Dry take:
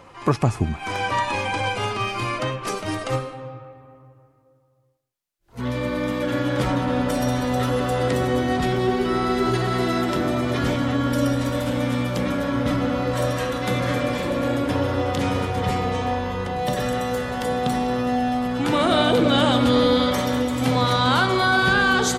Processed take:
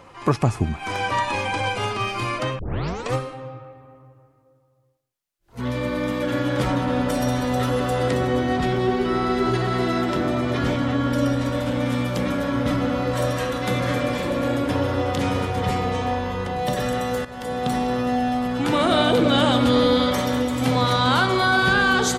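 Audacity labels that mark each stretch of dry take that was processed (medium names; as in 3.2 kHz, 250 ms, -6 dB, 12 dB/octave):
2.590000	2.590000	tape start 0.55 s
8.140000	11.860000	treble shelf 7.8 kHz -9 dB
17.250000	17.740000	fade in, from -12.5 dB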